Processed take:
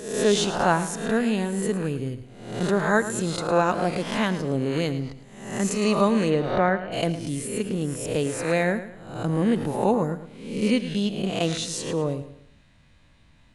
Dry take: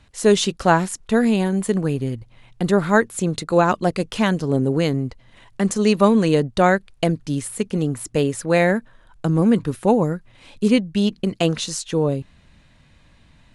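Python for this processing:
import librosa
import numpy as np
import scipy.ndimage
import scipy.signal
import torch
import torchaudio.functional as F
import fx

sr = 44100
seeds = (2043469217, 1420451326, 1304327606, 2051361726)

y = fx.spec_swells(x, sr, rise_s=0.73)
y = fx.lowpass(y, sr, hz=fx.line((6.29, 3200.0), (6.91, 1700.0)), slope=12, at=(6.29, 6.91), fade=0.02)
y = fx.echo_feedback(y, sr, ms=109, feedback_pct=36, wet_db=-13)
y = y * 10.0 ** (-6.5 / 20.0)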